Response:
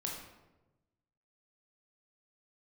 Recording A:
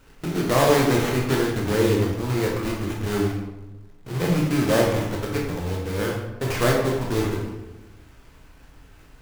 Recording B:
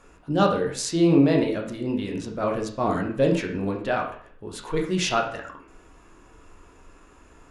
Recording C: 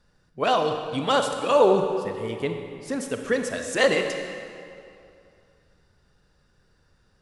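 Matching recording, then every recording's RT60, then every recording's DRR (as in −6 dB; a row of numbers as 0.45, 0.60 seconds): A; 1.1, 0.50, 2.6 seconds; −1.5, 0.5, 5.0 decibels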